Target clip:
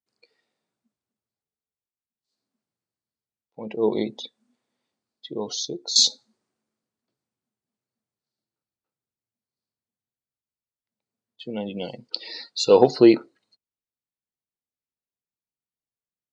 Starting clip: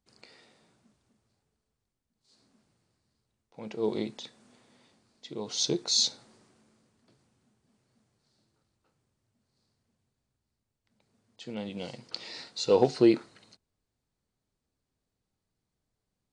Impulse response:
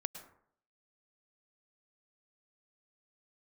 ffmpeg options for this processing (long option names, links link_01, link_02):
-filter_complex "[0:a]asettb=1/sr,asplit=3[link_01][link_02][link_03];[link_01]atrim=end=5.504[link_04];[link_02]atrim=start=5.5:end=5.96,asetpts=PTS-STARTPTS,afade=type=in:duration=0.004:curve=qsin,afade=type=out:start_time=0.456:duration=0.004:curve=qsin,acompressor=threshold=-36dB:ratio=5[link_05];[link_03]atrim=start=5.956[link_06];[link_04][link_05]acrossfade=duration=0.004:curve1=hsin:curve2=qsin[link_07];[link_07][link_06]acrossfade=duration=0.004:curve1=qsin:curve2=hsin,lowshelf=frequency=110:gain=-11.5,afftdn=noise_reduction=25:noise_floor=-44,volume=8.5dB"